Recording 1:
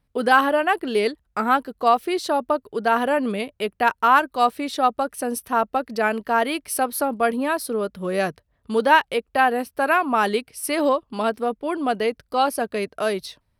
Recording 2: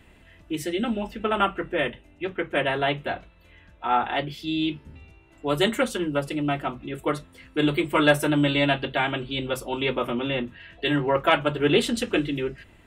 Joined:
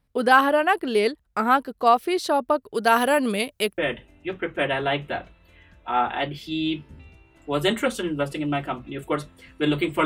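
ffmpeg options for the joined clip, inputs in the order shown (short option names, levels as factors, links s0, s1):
-filter_complex "[0:a]asettb=1/sr,asplit=3[s0][s1][s2];[s0]atrim=end=2.744[s3];[s1]atrim=start=2.74:end=3.78,asetpts=PTS-STARTPTS,afade=t=in:d=0.004:c=qsin,afade=t=out:st=1.036:d=0.004:c=qsin,highshelf=f=3300:g=12[s4];[s2]atrim=start=3.776[s5];[s3][s4]acrossfade=d=0.004:c1=hsin:c2=qsin[s6];[s6][s5]acrossfade=d=0.004:c1=qsin:c2=hsin,apad=whole_dur=10.05,atrim=end=10.05,atrim=end=3.782[s7];[1:a]atrim=start=1.738:end=8.01[s8];[s7][s8]acrossfade=d=0.004:c1=hsin:c2=hsin"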